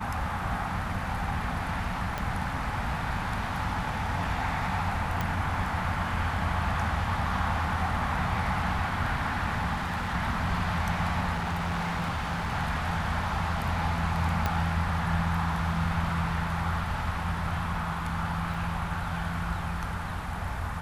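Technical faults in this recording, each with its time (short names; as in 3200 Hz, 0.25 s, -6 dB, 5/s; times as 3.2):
2.18 pop -17 dBFS
5.21 pop -15 dBFS
9.73–10.15 clipped -27 dBFS
11.32–12.53 clipped -26.5 dBFS
14.46 pop -12 dBFS
18.54 gap 3.3 ms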